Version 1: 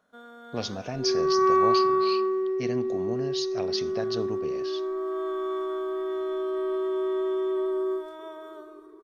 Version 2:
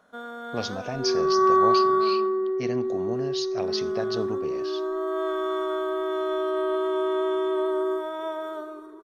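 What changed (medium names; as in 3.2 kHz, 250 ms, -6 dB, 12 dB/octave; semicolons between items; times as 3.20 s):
first sound +7.5 dB; second sound: add brick-wall FIR low-pass 1.9 kHz; master: add peaking EQ 880 Hz +3 dB 1.8 oct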